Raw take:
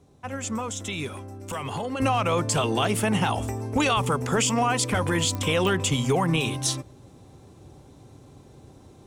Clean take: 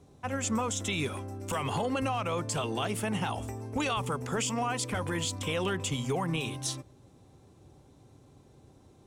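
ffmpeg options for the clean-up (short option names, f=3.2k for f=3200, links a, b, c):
-af "adeclick=t=4,asetnsamples=n=441:p=0,asendcmd='2 volume volume -8dB',volume=0dB"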